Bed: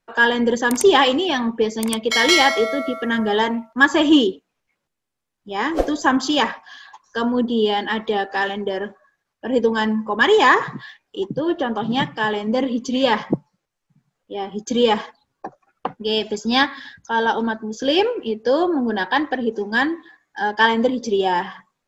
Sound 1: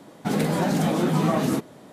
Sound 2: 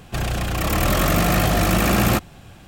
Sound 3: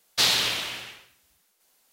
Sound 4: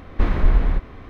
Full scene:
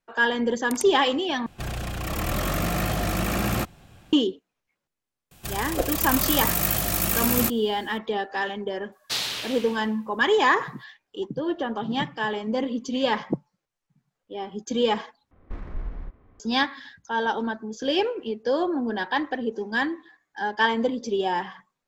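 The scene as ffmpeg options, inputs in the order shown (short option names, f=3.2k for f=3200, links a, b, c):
-filter_complex "[2:a]asplit=2[a][b];[0:a]volume=-6dB[c];[b]aemphasis=mode=production:type=75kf[d];[4:a]adynamicsmooth=sensitivity=3.5:basefreq=1.6k[e];[c]asplit=3[f][g][h];[f]atrim=end=1.464[i];[a]atrim=end=2.67,asetpts=PTS-STARTPTS,volume=-7.5dB[j];[g]atrim=start=4.126:end=15.314[k];[e]atrim=end=1.09,asetpts=PTS-STARTPTS,volume=-16.5dB[l];[h]atrim=start=16.396[m];[d]atrim=end=2.67,asetpts=PTS-STARTPTS,volume=-11dB,afade=t=in:d=0.004:c=hsin,afade=t=out:st=2.666:d=0.004:c=hsin,adelay=5310[n];[3:a]atrim=end=1.92,asetpts=PTS-STARTPTS,volume=-6.5dB,afade=t=in:d=0.004:c=hsin,afade=t=out:st=1.916:d=0.004:c=hsin,adelay=8920[o];[i][j]acrossfade=d=0.004:c1=hsin:c2=hsin[p];[p][k]acrossfade=d=0.004:c1=hsin:c2=hsin[q];[q][l]acrossfade=d=0.004:c1=hsin:c2=hsin[r];[r][m]acrossfade=d=0.004:c1=hsin:c2=hsin[s];[s][n][o]amix=inputs=3:normalize=0"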